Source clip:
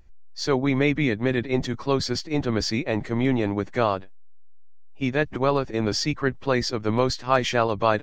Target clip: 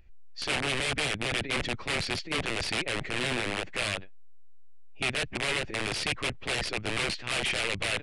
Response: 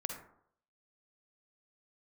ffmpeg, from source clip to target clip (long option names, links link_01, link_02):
-af "aeval=exprs='(mod(10.6*val(0)+1,2)-1)/10.6':channel_layout=same,aresample=22050,aresample=44100,equalizer=frequency=250:width_type=o:width=0.67:gain=-3,equalizer=frequency=1000:width_type=o:width=0.67:gain=-5,equalizer=frequency=2500:width_type=o:width=0.67:gain=8,equalizer=frequency=6300:width_type=o:width=0.67:gain=-8,volume=-2.5dB"